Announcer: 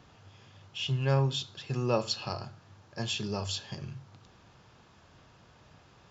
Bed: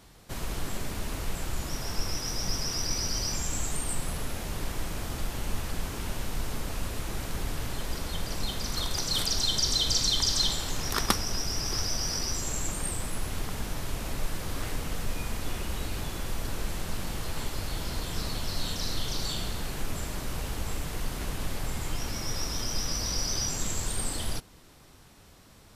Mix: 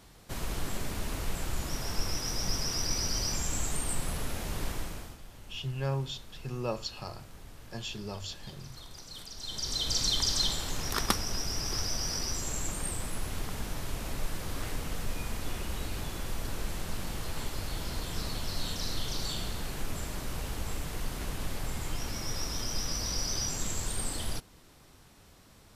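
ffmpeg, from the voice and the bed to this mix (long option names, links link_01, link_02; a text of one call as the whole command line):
ffmpeg -i stem1.wav -i stem2.wav -filter_complex "[0:a]adelay=4750,volume=-5.5dB[link_01];[1:a]volume=13.5dB,afade=type=out:start_time=4.68:duration=0.5:silence=0.158489,afade=type=in:start_time=9.36:duration=0.7:silence=0.188365[link_02];[link_01][link_02]amix=inputs=2:normalize=0" out.wav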